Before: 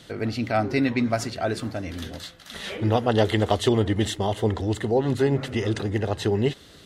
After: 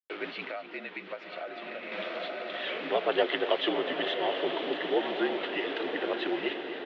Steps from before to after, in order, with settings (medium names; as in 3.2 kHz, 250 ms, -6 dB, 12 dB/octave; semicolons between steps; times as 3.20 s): coarse spectral quantiser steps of 15 dB; in parallel at -12 dB: saturation -24.5 dBFS, distortion -8 dB; on the sum: bit crusher 6-bit; on a send: echo that smears into a reverb 930 ms, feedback 53%, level -6 dB; on the sum: mistuned SSB -51 Hz 430–3300 Hz; treble shelf 2.2 kHz +8 dB; 0.43–1.92 s: compression 6:1, threshold -32 dBFS, peak gain reduction 14 dB; delay 250 ms -14 dB; trim -4.5 dB